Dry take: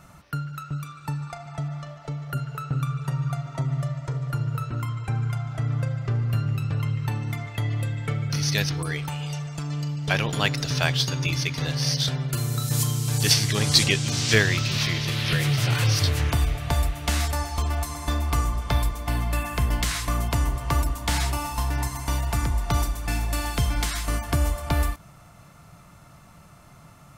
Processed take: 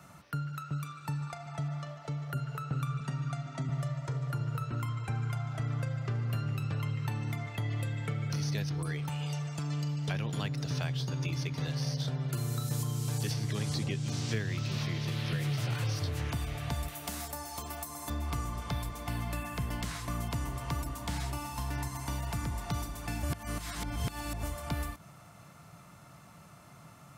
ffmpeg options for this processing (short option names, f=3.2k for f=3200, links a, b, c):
-filter_complex "[0:a]asettb=1/sr,asplit=3[a][b][c];[a]atrim=end=3.004[d];[b]atrim=start=3:end=3.69,asetpts=PTS-STARTPTS,afade=t=in:d=0.004:c=qsin,afade=t=out:st=0.686:d=0.004:c=qsin,highpass=150,equalizer=f=240:t=q:w=4:g=9,equalizer=f=490:t=q:w=4:g=-8,equalizer=f=1k:t=q:w=4:g=-7,lowpass=f=9k:w=0.5412,lowpass=f=9k:w=1.3066[e];[c]atrim=start=3.686[f];[d][e]acrossfade=d=0.004:c1=hsin:c2=qsin[g];[g][f]acrossfade=d=0.004:c1=qsin:c2=hsin,asettb=1/sr,asplit=3[h][i][j];[h]atrim=end=16.884[k];[i]atrim=start=16.88:end=18.1,asetpts=PTS-STARTPTS,afade=t=in:d=0.004:c=qsin,afade=t=out:st=1.216:d=0.004:c=qsin,aemphasis=mode=production:type=bsi[l];[j]atrim=start=18.096[m];[k][l]acrossfade=d=0.004:c1=hsin:c2=qsin[n];[n][m]acrossfade=d=0.004:c1=qsin:c2=hsin,asplit=3[o][p][q];[o]atrim=end=23.232[r];[p]atrim=start=23.228:end=24.432,asetpts=PTS-STARTPTS,areverse[s];[q]atrim=start=24.428[t];[r][s]acrossfade=d=0.004:c1=hsin:c2=hsin[u];[u][t]acrossfade=d=0.004:c1=hsin:c2=hsin,highpass=96,acrossover=split=250|1200[v][w][x];[v]acompressor=threshold=-28dB:ratio=4[y];[w]acompressor=threshold=-40dB:ratio=4[z];[x]acompressor=threshold=-40dB:ratio=4[aa];[y][z][aa]amix=inputs=3:normalize=0,volume=-3dB"